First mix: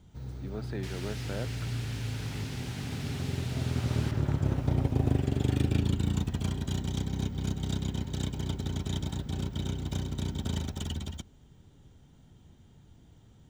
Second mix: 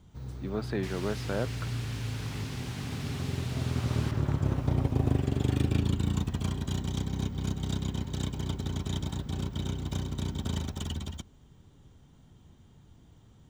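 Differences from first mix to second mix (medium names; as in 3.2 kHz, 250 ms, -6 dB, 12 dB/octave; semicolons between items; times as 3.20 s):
speech +6.0 dB; master: add peaking EQ 1.1 kHz +6 dB 0.25 oct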